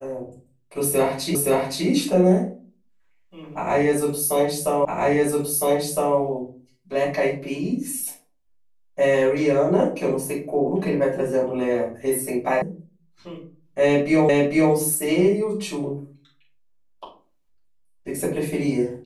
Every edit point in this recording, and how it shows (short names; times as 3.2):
1.35 repeat of the last 0.52 s
4.85 repeat of the last 1.31 s
12.62 sound cut off
14.29 repeat of the last 0.45 s